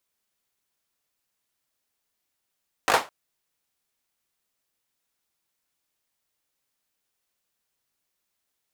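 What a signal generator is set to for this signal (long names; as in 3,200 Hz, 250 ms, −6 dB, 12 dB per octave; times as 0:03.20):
synth clap length 0.21 s, apart 19 ms, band 820 Hz, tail 0.24 s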